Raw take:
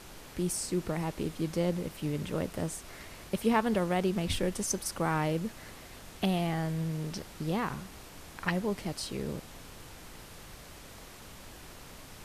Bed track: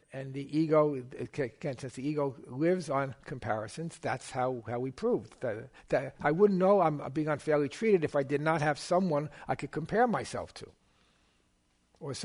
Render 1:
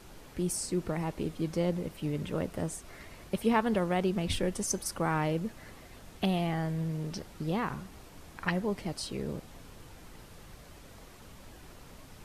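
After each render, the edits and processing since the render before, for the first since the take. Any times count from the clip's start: denoiser 6 dB, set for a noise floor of -49 dBFS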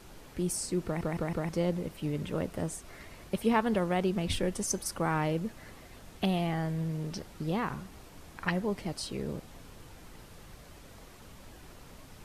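0.85 stutter in place 0.16 s, 4 plays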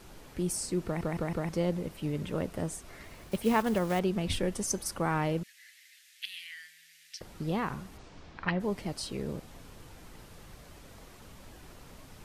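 3.04–4 block floating point 5-bit; 5.43–7.21 elliptic high-pass 1800 Hz, stop band 50 dB; 7.97–8.59 LPF 7700 Hz -> 3900 Hz 24 dB/oct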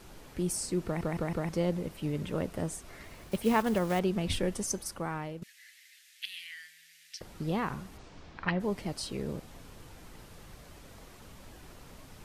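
4.51–5.42 fade out, to -13 dB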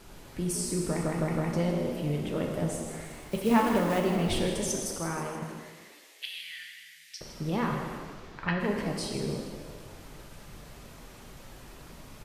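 on a send: frequency-shifting echo 0.159 s, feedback 52%, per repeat +66 Hz, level -11 dB; on the sum: non-linear reverb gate 0.5 s falling, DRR 1 dB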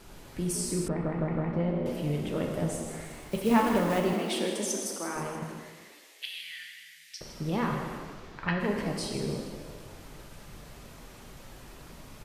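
0.88–1.86 air absorption 480 m; 4.13–5.16 Chebyshev high-pass 200 Hz, order 5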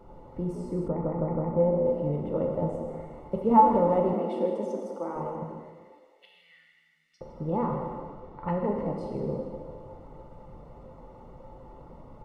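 polynomial smoothing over 65 samples; small resonant body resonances 520/870 Hz, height 13 dB, ringing for 95 ms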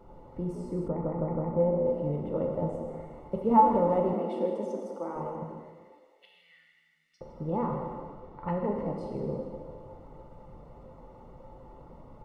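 gain -2 dB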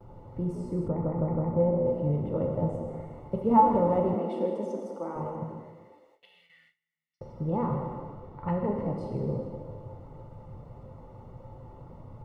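gate with hold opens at -52 dBFS; bell 110 Hz +13.5 dB 0.69 oct

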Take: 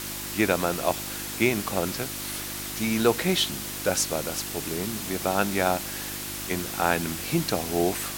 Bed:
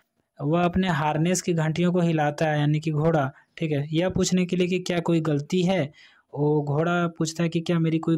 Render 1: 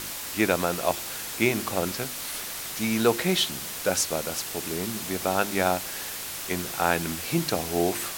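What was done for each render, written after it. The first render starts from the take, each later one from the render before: de-hum 50 Hz, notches 7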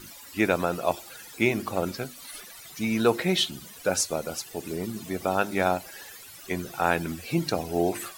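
denoiser 16 dB, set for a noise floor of -35 dBFS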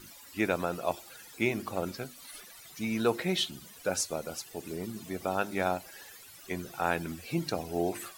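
gain -5.5 dB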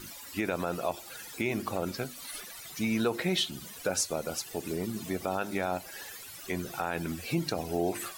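in parallel at -0.5 dB: compressor, threshold -37 dBFS, peak gain reduction 15 dB; on the sum: limiter -18 dBFS, peak gain reduction 7.5 dB

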